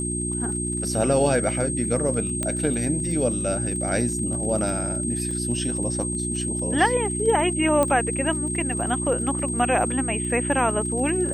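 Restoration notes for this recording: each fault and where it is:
crackle 35 per s -32 dBFS
hum 60 Hz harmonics 6 -29 dBFS
whine 8.4 kHz -28 dBFS
2.43 s: pop -12 dBFS
5.31 s: dropout 2.9 ms
7.83 s: pop -9 dBFS

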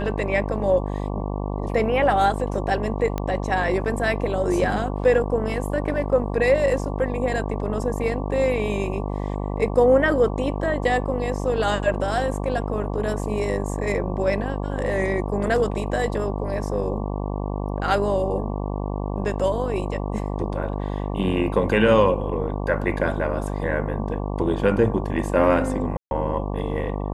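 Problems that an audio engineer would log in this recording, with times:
buzz 50 Hz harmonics 23 -27 dBFS
3.18 s: pop -13 dBFS
25.97–26.11 s: dropout 141 ms

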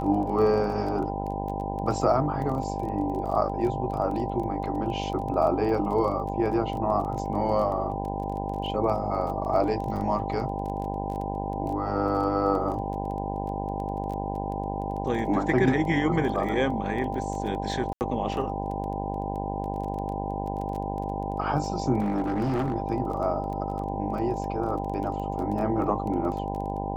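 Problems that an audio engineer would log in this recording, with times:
buzz 50 Hz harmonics 20 -32 dBFS
crackle 19 per s -33 dBFS
whine 790 Hz -33 dBFS
17.93–18.01 s: dropout 79 ms
22.00–22.74 s: clipped -22.5 dBFS

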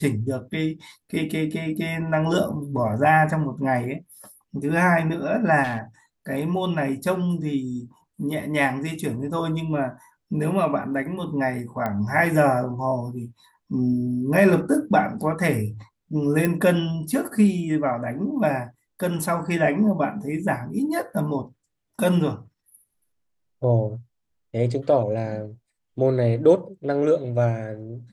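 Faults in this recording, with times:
5.63–5.79 s: clipped -22.5 dBFS
11.86 s: pop -15 dBFS
16.45 s: pop -10 dBFS

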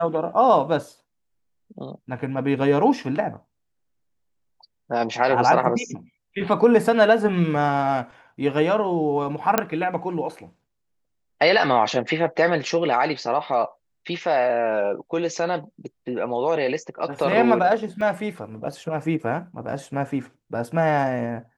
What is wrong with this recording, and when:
9.58 s: pop -3 dBFS
18.01 s: dropout 2.7 ms

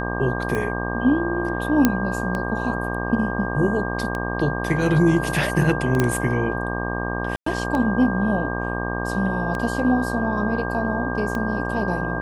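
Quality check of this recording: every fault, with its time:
buzz 60 Hz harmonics 20 -27 dBFS
tick 33 1/3 rpm -14 dBFS
whine 1.6 kHz -29 dBFS
1.85 s: pop -2 dBFS
6.00 s: pop -6 dBFS
7.36–7.46 s: dropout 104 ms

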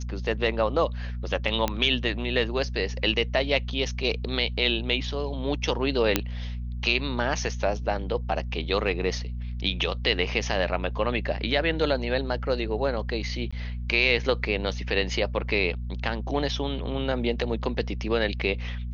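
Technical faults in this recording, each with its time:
hum 60 Hz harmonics 4 -32 dBFS
1.68 s: pop -10 dBFS
6.16 s: pop -4 dBFS
13.51–13.53 s: dropout 15 ms

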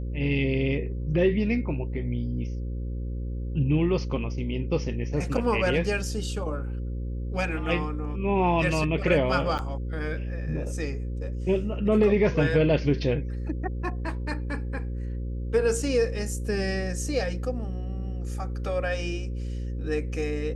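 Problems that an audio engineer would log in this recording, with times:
buzz 60 Hz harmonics 9 -31 dBFS
9.58–9.59 s: dropout 8.6 ms

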